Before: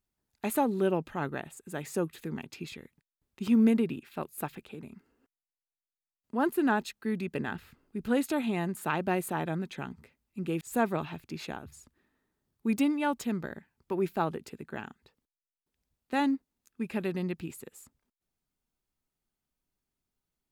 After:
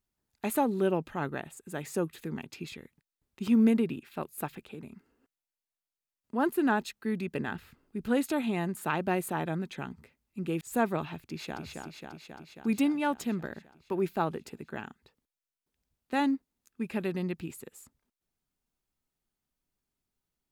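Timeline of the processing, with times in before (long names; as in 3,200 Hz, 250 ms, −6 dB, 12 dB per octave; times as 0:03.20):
0:11.20–0:11.63: delay throw 270 ms, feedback 75%, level −4 dB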